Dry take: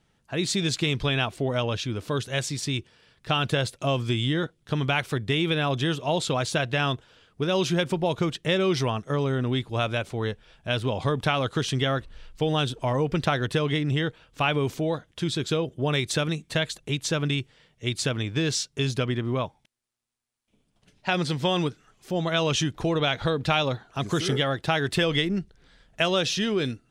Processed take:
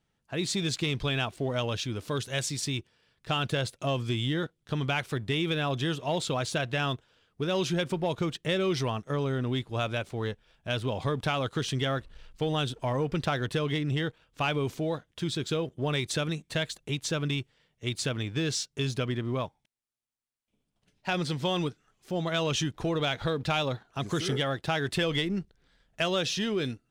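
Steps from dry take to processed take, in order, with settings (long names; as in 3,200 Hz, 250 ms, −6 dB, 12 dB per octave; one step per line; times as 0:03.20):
0:01.57–0:02.70: high-shelf EQ 4,200 Hz +5 dB
leveller curve on the samples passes 1
level −7.5 dB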